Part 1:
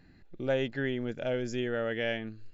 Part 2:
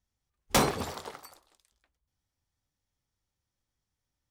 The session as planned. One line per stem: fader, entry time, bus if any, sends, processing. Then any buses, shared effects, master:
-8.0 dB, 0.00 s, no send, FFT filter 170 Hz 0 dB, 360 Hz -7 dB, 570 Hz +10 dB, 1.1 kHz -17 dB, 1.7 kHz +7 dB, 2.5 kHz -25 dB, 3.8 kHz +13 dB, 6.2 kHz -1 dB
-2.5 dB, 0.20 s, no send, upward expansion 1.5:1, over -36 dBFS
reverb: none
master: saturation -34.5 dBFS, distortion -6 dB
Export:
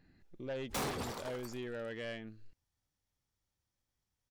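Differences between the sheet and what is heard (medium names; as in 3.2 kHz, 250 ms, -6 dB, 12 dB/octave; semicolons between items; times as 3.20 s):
stem 1: missing FFT filter 170 Hz 0 dB, 360 Hz -7 dB, 570 Hz +10 dB, 1.1 kHz -17 dB, 1.7 kHz +7 dB, 2.5 kHz -25 dB, 3.8 kHz +13 dB, 6.2 kHz -1 dB; stem 2 -2.5 dB -> +6.0 dB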